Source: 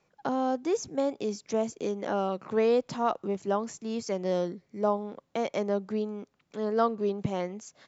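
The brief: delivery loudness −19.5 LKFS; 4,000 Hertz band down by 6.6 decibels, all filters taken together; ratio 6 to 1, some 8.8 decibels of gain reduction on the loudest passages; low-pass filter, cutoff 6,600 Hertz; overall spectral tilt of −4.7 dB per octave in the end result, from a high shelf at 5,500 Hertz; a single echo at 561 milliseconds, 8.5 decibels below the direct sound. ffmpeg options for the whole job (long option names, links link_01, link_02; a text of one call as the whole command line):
ffmpeg -i in.wav -af "lowpass=6600,equalizer=frequency=4000:width_type=o:gain=-5,highshelf=frequency=5500:gain=-8,acompressor=threshold=-30dB:ratio=6,aecho=1:1:561:0.376,volume=16dB" out.wav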